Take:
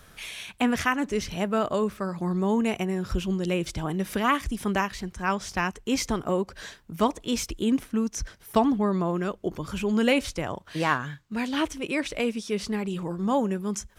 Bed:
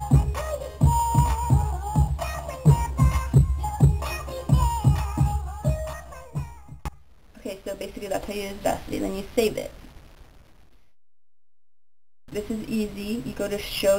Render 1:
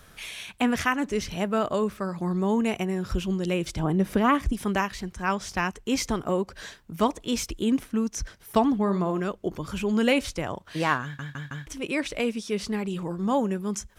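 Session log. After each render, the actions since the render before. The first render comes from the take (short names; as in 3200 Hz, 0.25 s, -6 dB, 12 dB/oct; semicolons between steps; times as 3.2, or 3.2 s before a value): 3.79–4.53 tilt shelf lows +5.5 dB, about 1300 Hz; 8.75–9.2 flutter echo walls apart 9.4 m, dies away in 0.28 s; 11.03 stutter in place 0.16 s, 4 plays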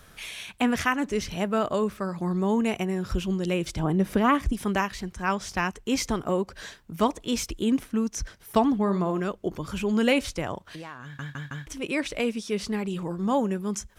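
10.71–11.16 compressor, threshold -37 dBFS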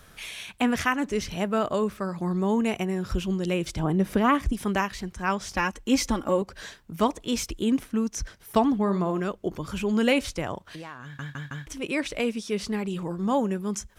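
5.54–6.42 comb 3.6 ms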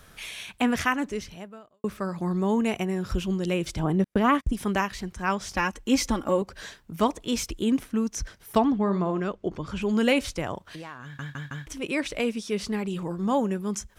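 0.96–1.84 fade out quadratic; 4.04–4.53 gate -30 dBFS, range -46 dB; 8.58–9.82 air absorption 75 m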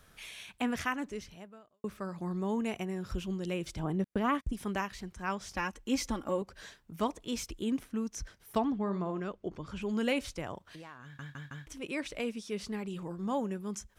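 gain -8.5 dB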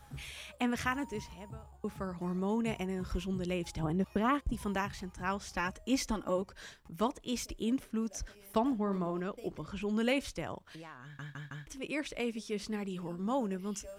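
add bed -28.5 dB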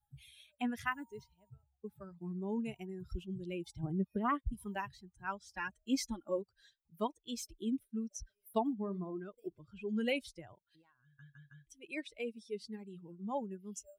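per-bin expansion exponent 2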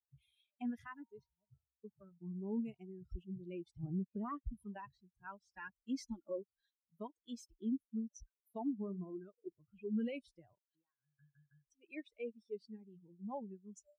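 limiter -29.5 dBFS, peak gain reduction 9.5 dB; spectral expander 1.5:1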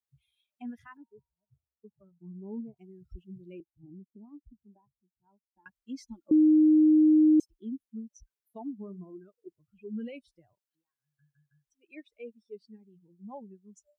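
0.97–2.77 inverse Chebyshev low-pass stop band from 3700 Hz, stop band 60 dB; 3.6–5.66 vocal tract filter u; 6.31–7.4 bleep 309 Hz -16.5 dBFS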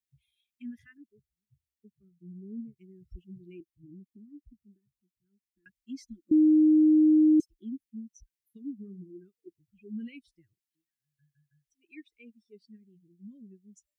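Chebyshev band-stop 350–1800 Hz, order 3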